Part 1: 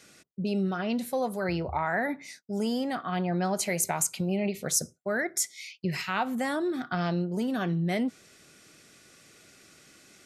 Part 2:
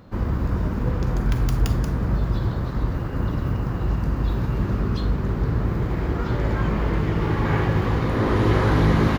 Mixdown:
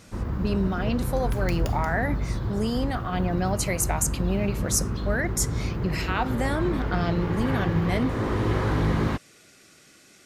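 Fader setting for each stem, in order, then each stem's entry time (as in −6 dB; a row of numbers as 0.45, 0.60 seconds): +1.5, −5.5 decibels; 0.00, 0.00 seconds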